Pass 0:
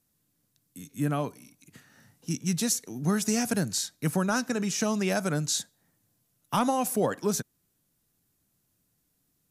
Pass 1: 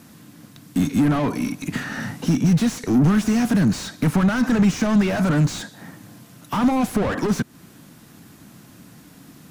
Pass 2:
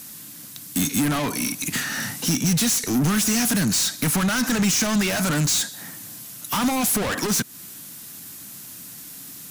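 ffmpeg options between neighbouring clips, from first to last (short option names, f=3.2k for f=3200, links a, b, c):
-filter_complex "[0:a]acompressor=threshold=-36dB:ratio=5,asplit=2[a][b];[b]highpass=f=720:p=1,volume=34dB,asoftclip=type=tanh:threshold=-23.5dB[c];[a][c]amix=inputs=2:normalize=0,lowpass=f=1.4k:p=1,volume=-6dB,lowshelf=f=330:t=q:w=1.5:g=7,volume=8.5dB"
-af "crystalizer=i=8:c=0,volume=-5dB"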